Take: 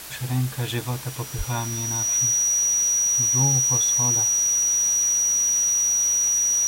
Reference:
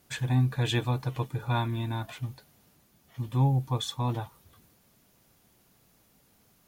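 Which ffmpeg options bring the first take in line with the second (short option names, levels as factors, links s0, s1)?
-filter_complex "[0:a]bandreject=f=64.3:t=h:w=4,bandreject=f=128.6:t=h:w=4,bandreject=f=192.9:t=h:w=4,bandreject=f=257.2:t=h:w=4,bandreject=f=321.5:t=h:w=4,bandreject=f=5800:w=30,asplit=3[s0][s1][s2];[s0]afade=t=out:st=1.37:d=0.02[s3];[s1]highpass=f=140:w=0.5412,highpass=f=140:w=1.3066,afade=t=in:st=1.37:d=0.02,afade=t=out:st=1.49:d=0.02[s4];[s2]afade=t=in:st=1.49:d=0.02[s5];[s3][s4][s5]amix=inputs=3:normalize=0,afftdn=nr=30:nf=-33"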